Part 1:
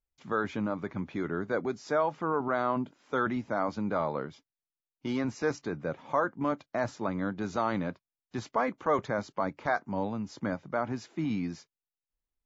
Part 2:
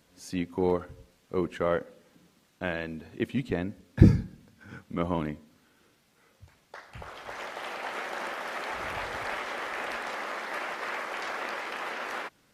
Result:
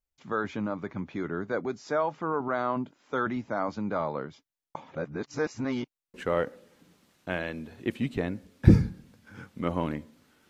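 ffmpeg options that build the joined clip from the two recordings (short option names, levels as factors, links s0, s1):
-filter_complex "[0:a]apad=whole_dur=10.49,atrim=end=10.49,asplit=2[s0][s1];[s0]atrim=end=4.752[s2];[s1]atrim=start=4.748:end=6.142,asetpts=PTS-STARTPTS,areverse[s3];[1:a]atrim=start=1.478:end=5.83[s4];[s2][s3]acrossfade=d=0.004:c1=hsin:c2=hsin[s5];[s5][s4]acrossfade=d=0.004:c1=hsin:c2=hsin"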